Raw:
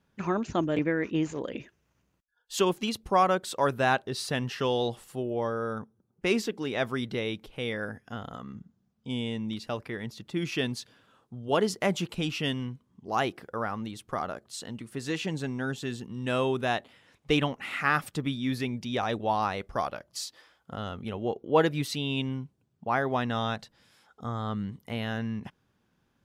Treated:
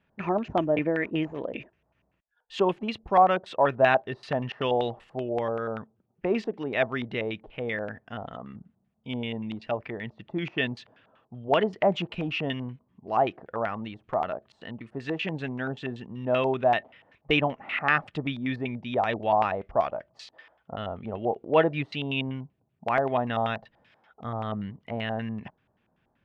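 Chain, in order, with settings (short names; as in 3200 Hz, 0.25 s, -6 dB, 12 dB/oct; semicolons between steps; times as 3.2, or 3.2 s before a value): small resonant body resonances 640/1800 Hz, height 7 dB; LFO low-pass square 5.2 Hz 810–2600 Hz; gain -1 dB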